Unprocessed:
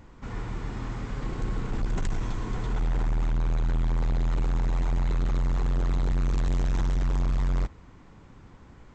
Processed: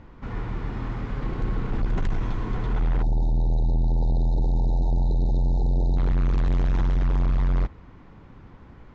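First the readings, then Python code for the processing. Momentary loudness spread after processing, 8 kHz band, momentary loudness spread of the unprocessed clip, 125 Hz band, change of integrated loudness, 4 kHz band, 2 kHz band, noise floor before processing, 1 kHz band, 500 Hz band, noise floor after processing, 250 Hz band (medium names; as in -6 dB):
8 LU, no reading, 8 LU, +3.5 dB, +3.5 dB, -2.0 dB, 0.0 dB, -51 dBFS, +1.5 dB, +3.0 dB, -48 dBFS, +3.5 dB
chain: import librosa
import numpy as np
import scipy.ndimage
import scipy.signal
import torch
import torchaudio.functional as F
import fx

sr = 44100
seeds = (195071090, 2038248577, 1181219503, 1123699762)

y = fx.spec_erase(x, sr, start_s=3.03, length_s=2.94, low_hz=930.0, high_hz=3600.0)
y = fx.air_absorb(y, sr, metres=180.0)
y = y * librosa.db_to_amplitude(3.5)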